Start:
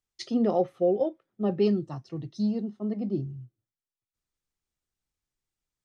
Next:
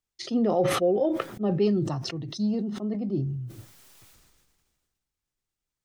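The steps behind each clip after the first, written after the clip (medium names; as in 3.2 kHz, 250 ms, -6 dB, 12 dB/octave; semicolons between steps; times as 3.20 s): decay stretcher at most 32 dB/s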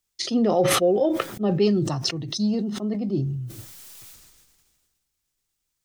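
treble shelf 3 kHz +9 dB; trim +3 dB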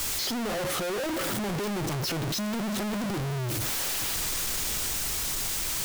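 one-bit comparator; trim -4.5 dB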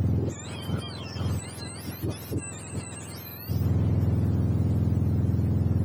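spectrum inverted on a logarithmic axis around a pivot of 1.3 kHz; trim -6.5 dB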